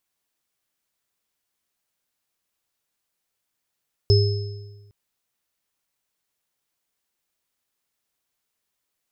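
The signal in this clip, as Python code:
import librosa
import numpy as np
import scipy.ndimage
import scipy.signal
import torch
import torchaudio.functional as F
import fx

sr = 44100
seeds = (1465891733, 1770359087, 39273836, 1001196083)

y = fx.additive_free(sr, length_s=0.81, hz=103.0, level_db=-12.0, upper_db=(-5, -8.5), decay_s=1.3, upper_decays_s=(1.07, 0.95), upper_hz=(405.0, 5200.0))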